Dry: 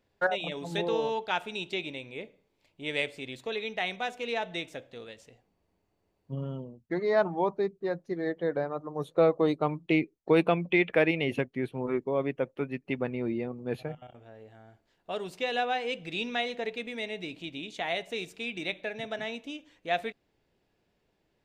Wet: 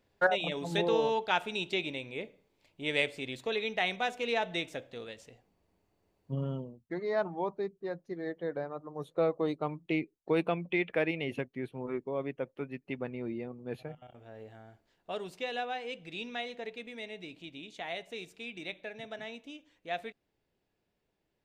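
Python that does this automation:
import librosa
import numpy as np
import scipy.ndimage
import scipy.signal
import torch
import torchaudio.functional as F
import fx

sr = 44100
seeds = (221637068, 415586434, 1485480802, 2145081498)

y = fx.gain(x, sr, db=fx.line((6.54, 1.0), (6.94, -6.0), (13.95, -6.0), (14.41, 2.5), (15.69, -7.0)))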